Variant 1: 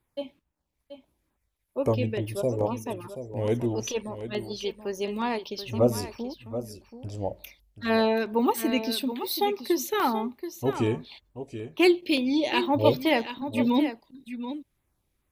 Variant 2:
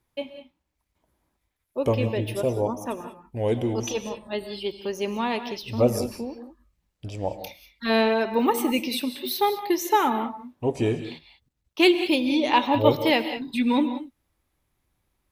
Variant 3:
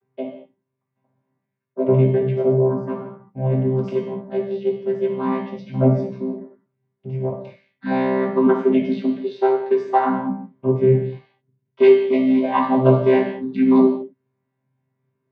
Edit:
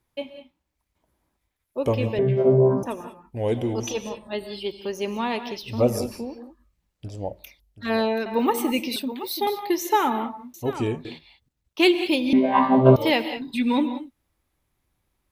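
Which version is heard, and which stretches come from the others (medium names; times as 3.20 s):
2
2.19–2.83 s: from 3
7.08–8.26 s: from 1
8.96–9.47 s: from 1
10.54–11.05 s: from 1
12.33–12.96 s: from 3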